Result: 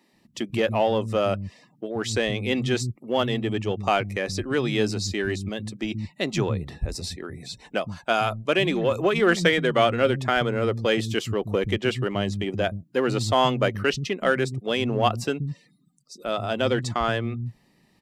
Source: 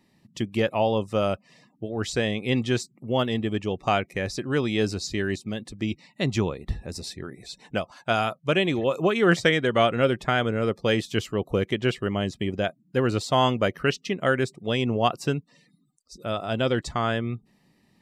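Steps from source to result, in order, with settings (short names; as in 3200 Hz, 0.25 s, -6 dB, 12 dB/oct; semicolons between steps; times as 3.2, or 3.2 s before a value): in parallel at -9 dB: hard clip -25 dBFS, distortion -6 dB; on the sum: bands offset in time highs, lows 0.13 s, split 200 Hz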